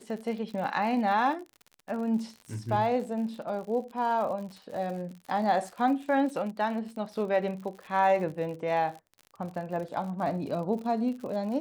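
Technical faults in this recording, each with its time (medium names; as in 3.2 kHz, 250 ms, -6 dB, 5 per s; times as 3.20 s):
crackle 68 per s -38 dBFS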